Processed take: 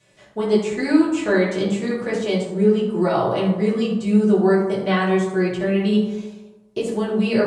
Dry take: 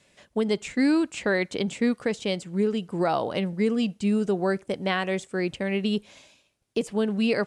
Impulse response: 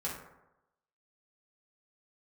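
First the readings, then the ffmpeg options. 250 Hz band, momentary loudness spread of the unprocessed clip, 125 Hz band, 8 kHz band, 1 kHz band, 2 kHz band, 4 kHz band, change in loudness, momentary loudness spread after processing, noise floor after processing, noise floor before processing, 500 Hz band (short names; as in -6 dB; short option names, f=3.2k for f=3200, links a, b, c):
+6.5 dB, 5 LU, +8.5 dB, n/a, +5.5 dB, +3.5 dB, +1.5 dB, +6.5 dB, 9 LU, -52 dBFS, -68 dBFS, +7.0 dB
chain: -filter_complex "[1:a]atrim=start_sample=2205,asetrate=33516,aresample=44100[a];[0:a][a]afir=irnorm=-1:irlink=0"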